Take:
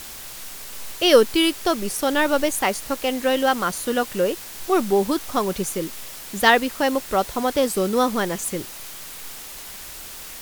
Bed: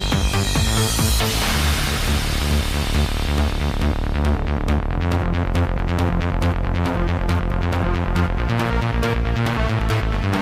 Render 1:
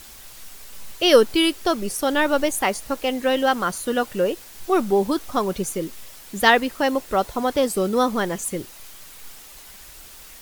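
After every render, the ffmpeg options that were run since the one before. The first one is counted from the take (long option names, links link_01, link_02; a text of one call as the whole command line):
ffmpeg -i in.wav -af "afftdn=noise_reduction=7:noise_floor=-37" out.wav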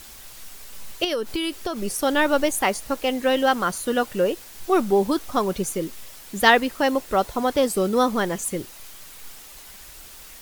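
ffmpeg -i in.wav -filter_complex "[0:a]asettb=1/sr,asplit=3[link_01][link_02][link_03];[link_01]atrim=end=1.044[link_04];[link_02]atrim=start=1.04:end=1.87,asetpts=PTS-STARTPTS,afade=type=in:duration=0.004:curve=qsin,afade=type=out:start_time=0.826:duration=0.004:curve=qsin,acompressor=threshold=-21dB:ratio=12:attack=3.2:release=140:knee=1:detection=peak[link_05];[link_03]atrim=start=1.866[link_06];[link_04][link_05]acrossfade=duration=0.004:curve1=hsin:curve2=qsin[link_07];[link_07][link_06]acrossfade=duration=0.004:curve1=qsin:curve2=hsin" out.wav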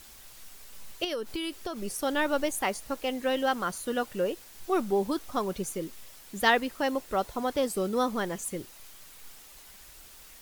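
ffmpeg -i in.wav -af "volume=-7.5dB" out.wav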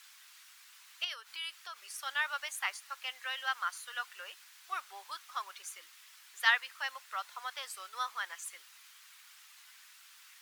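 ffmpeg -i in.wav -af "highpass=frequency=1200:width=0.5412,highpass=frequency=1200:width=1.3066,highshelf=frequency=6400:gain=-11" out.wav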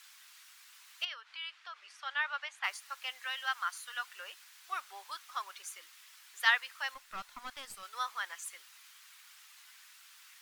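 ffmpeg -i in.wav -filter_complex "[0:a]asettb=1/sr,asplit=3[link_01][link_02][link_03];[link_01]atrim=end=1.054[link_04];[link_02]atrim=start=1.05:end=2.64,asetpts=PTS-STARTPTS,afade=type=in:duration=0.004:curve=qsin,afade=type=out:start_time=1.586:duration=0.004:curve=qsin,highpass=570,lowpass=3400[link_05];[link_03]atrim=start=2.636[link_06];[link_04][link_05]acrossfade=duration=0.004:curve1=hsin:curve2=qsin[link_07];[link_07][link_06]acrossfade=duration=0.004:curve1=qsin:curve2=hsin,asettb=1/sr,asplit=3[link_08][link_09][link_10];[link_08]atrim=end=3.244[link_11];[link_09]atrim=start=3.24:end=4.04,asetpts=PTS-STARTPTS,afade=type=in:duration=0.004:curve=qsin,afade=type=out:start_time=0.796:duration=0.004:curve=qsin,highpass=610[link_12];[link_10]atrim=start=4.036[link_13];[link_11][link_12]acrossfade=duration=0.004:curve1=hsin:curve2=qsin[link_14];[link_14][link_13]acrossfade=duration=0.004:curve1=qsin:curve2=hsin,asettb=1/sr,asplit=3[link_15][link_16][link_17];[link_15]atrim=end=6.944[link_18];[link_16]atrim=start=6.94:end=7.83,asetpts=PTS-STARTPTS,afade=type=in:duration=0.004:curve=qsin,afade=type=out:start_time=0.886:duration=0.004:curve=qsin,aeval=exprs='(tanh(63.1*val(0)+0.65)-tanh(0.65))/63.1':channel_layout=same[link_19];[link_17]atrim=start=7.826[link_20];[link_18][link_19]acrossfade=duration=0.004:curve1=hsin:curve2=qsin[link_21];[link_21][link_20]acrossfade=duration=0.004:curve1=qsin:curve2=hsin" out.wav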